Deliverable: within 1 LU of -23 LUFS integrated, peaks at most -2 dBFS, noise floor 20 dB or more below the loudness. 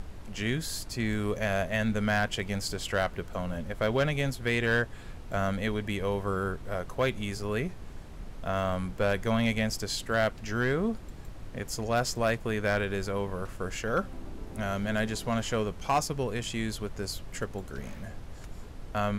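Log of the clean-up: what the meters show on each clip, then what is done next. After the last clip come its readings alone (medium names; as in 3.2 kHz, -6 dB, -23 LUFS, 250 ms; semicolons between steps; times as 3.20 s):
clipped samples 0.3%; clipping level -19.0 dBFS; noise floor -44 dBFS; noise floor target -51 dBFS; loudness -31.0 LUFS; peak level -19.0 dBFS; loudness target -23.0 LUFS
-> clip repair -19 dBFS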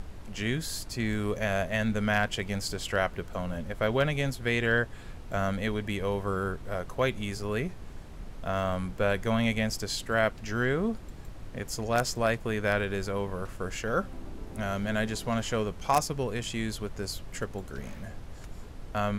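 clipped samples 0.0%; noise floor -44 dBFS; noise floor target -51 dBFS
-> noise print and reduce 7 dB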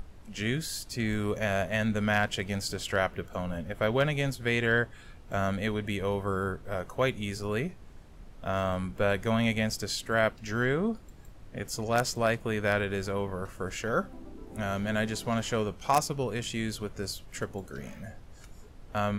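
noise floor -50 dBFS; noise floor target -51 dBFS
-> noise print and reduce 6 dB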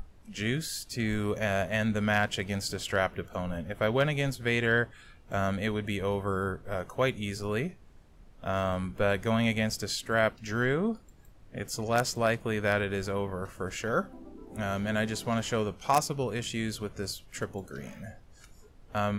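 noise floor -55 dBFS; loudness -30.5 LUFS; peak level -10.0 dBFS; loudness target -23.0 LUFS
-> trim +7.5 dB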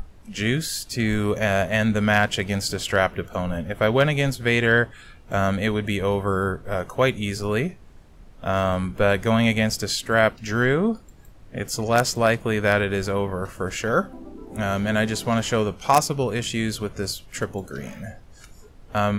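loudness -23.0 LUFS; peak level -2.5 dBFS; noise floor -47 dBFS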